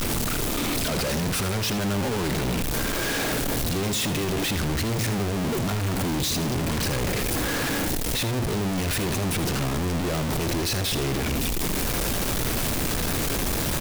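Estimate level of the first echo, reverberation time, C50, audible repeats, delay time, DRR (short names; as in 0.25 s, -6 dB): -11.5 dB, none, none, 1, 80 ms, none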